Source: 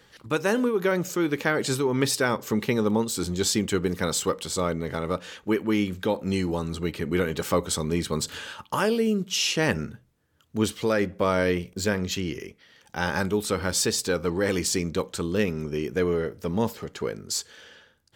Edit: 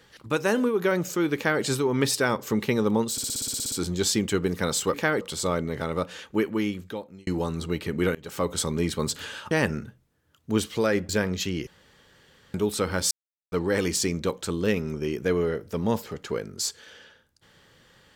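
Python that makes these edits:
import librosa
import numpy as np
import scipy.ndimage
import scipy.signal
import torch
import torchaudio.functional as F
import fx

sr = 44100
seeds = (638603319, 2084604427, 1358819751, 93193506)

y = fx.edit(x, sr, fx.duplicate(start_s=1.36, length_s=0.27, to_s=4.34),
    fx.stutter(start_s=3.12, slice_s=0.06, count=11),
    fx.fade_out_span(start_s=5.5, length_s=0.9),
    fx.fade_in_from(start_s=7.28, length_s=0.42, floor_db=-24.0),
    fx.cut(start_s=8.64, length_s=0.93),
    fx.cut(start_s=11.15, length_s=0.65),
    fx.room_tone_fill(start_s=12.38, length_s=0.87),
    fx.silence(start_s=13.82, length_s=0.41), tone=tone)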